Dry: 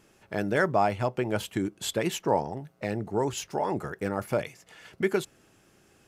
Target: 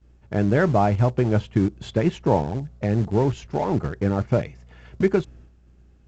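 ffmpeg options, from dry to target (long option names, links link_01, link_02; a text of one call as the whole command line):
ffmpeg -i in.wav -filter_complex "[0:a]aeval=exprs='val(0)+0.001*(sin(2*PI*60*n/s)+sin(2*PI*2*60*n/s)/2+sin(2*PI*3*60*n/s)/3+sin(2*PI*4*60*n/s)/4+sin(2*PI*5*60*n/s)/5)':channel_layout=same,agate=range=-33dB:threshold=-51dB:ratio=3:detection=peak,aemphasis=mode=reproduction:type=riaa,asplit=2[link_01][link_02];[link_02]aeval=exprs='val(0)*gte(abs(val(0)),0.0631)':channel_layout=same,volume=-11dB[link_03];[link_01][link_03]amix=inputs=2:normalize=0" -ar 16000 -c:a pcm_mulaw out.wav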